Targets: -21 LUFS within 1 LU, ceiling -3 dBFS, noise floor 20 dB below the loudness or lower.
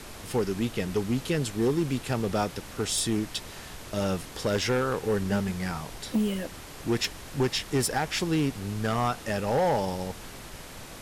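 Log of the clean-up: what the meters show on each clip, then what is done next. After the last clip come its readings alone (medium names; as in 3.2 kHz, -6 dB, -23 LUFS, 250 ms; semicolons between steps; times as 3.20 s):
clipped samples 1.5%; clipping level -19.5 dBFS; noise floor -43 dBFS; noise floor target -49 dBFS; loudness -28.5 LUFS; peak level -19.5 dBFS; loudness target -21.0 LUFS
-> clip repair -19.5 dBFS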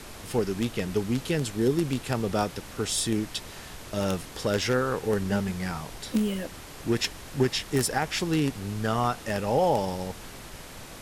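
clipped samples 0.0%; noise floor -43 dBFS; noise floor target -48 dBFS
-> noise print and reduce 6 dB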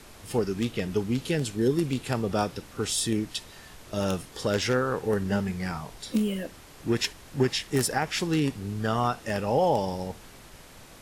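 noise floor -49 dBFS; loudness -28.0 LUFS; peak level -10.5 dBFS; loudness target -21.0 LUFS
-> trim +7 dB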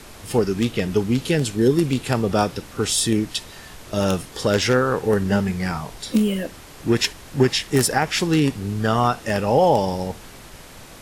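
loudness -21.0 LUFS; peak level -3.5 dBFS; noise floor -42 dBFS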